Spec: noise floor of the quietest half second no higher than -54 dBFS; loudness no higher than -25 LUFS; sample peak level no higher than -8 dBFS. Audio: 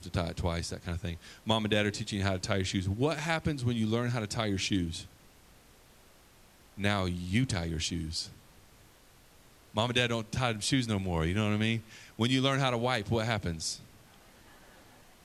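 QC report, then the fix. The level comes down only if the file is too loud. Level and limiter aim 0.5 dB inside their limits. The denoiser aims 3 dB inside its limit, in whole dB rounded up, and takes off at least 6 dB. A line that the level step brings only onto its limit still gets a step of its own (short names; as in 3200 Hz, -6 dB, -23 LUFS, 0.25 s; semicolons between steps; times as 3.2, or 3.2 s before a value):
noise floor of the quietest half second -59 dBFS: OK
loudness -31.5 LUFS: OK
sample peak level -11.0 dBFS: OK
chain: none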